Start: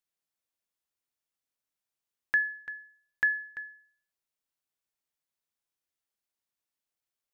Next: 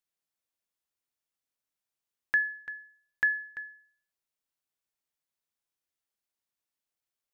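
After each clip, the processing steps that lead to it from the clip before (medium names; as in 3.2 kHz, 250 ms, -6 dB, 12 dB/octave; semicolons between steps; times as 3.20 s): no audible change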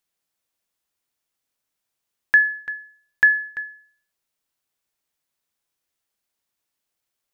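dynamic bell 1.4 kHz, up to +3 dB, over -38 dBFS, Q 1.1; trim +8.5 dB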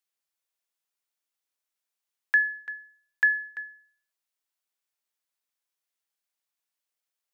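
high-pass 660 Hz 6 dB/octave; trim -6 dB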